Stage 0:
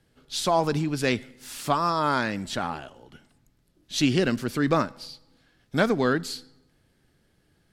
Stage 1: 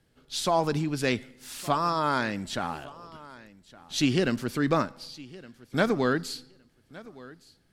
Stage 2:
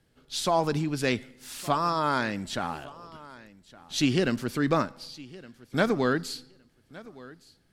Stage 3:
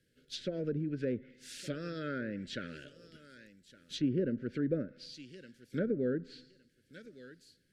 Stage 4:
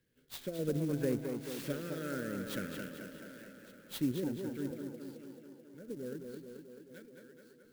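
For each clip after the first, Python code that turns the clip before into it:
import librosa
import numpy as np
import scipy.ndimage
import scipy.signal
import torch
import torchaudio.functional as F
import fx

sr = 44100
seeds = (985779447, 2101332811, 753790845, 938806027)

y1 = fx.echo_feedback(x, sr, ms=1164, feedback_pct=16, wet_db=-20.5)
y1 = y1 * 10.0 ** (-2.0 / 20.0)
y2 = y1
y3 = scipy.signal.sosfilt(scipy.signal.ellip(3, 1.0, 40, [550.0, 1500.0], 'bandstop', fs=sr, output='sos'), y2)
y3 = fx.low_shelf(y3, sr, hz=95.0, db=-9.0)
y3 = fx.env_lowpass_down(y3, sr, base_hz=760.0, full_db=-25.5)
y3 = y3 * 10.0 ** (-4.5 / 20.0)
y4 = fx.tremolo_random(y3, sr, seeds[0], hz=1.7, depth_pct=90)
y4 = fx.echo_tape(y4, sr, ms=215, feedback_pct=74, wet_db=-3.5, lp_hz=3200.0, drive_db=29.0, wow_cents=33)
y4 = fx.clock_jitter(y4, sr, seeds[1], jitter_ms=0.041)
y4 = y4 * 10.0 ** (1.0 / 20.0)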